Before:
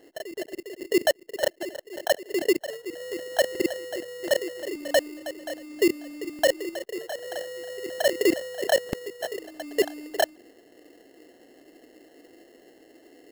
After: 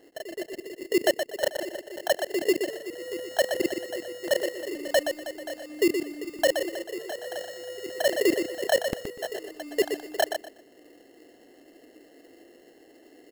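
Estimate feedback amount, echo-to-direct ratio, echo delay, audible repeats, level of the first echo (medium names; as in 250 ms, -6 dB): 21%, -7.0 dB, 122 ms, 3, -7.0 dB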